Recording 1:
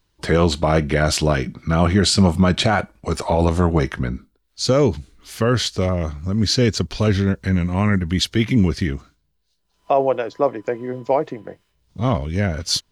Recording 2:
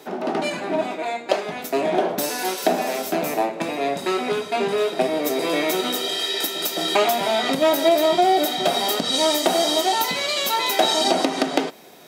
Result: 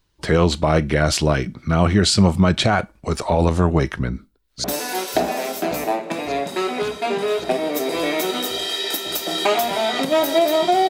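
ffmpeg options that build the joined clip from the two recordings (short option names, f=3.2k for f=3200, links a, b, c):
-filter_complex "[0:a]apad=whole_dur=10.89,atrim=end=10.89,atrim=end=4.642[a];[1:a]atrim=start=2.138:end=8.39[b];[a][b]acrossfade=d=0.004:c1=hsin:c2=hsin,asplit=2[c][d];[d]afade=t=in:st=4.02:d=0.01,afade=t=out:st=4.64:d=0.01,aecho=0:1:560|1120|1680|2240|2800|3360|3920|4480|5040|5600|6160|6720:0.199526|0.169597|0.144158|0.122534|0.104154|0.0885308|0.0752512|0.0639635|0.054369|0.0462137|0.0392816|0.0333894[e];[c][e]amix=inputs=2:normalize=0"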